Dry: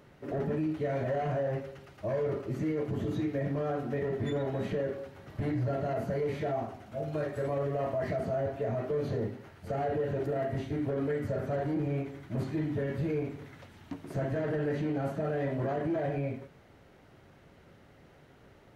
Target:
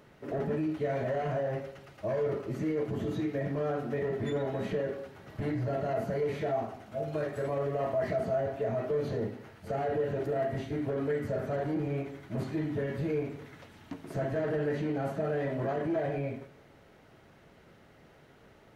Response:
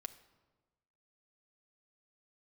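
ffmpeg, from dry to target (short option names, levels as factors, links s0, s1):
-filter_complex "[0:a]asplit=2[s0][s1];[1:a]atrim=start_sample=2205,lowshelf=f=180:g=-8.5[s2];[s1][s2]afir=irnorm=-1:irlink=0,volume=1.88[s3];[s0][s3]amix=inputs=2:normalize=0,volume=0.531"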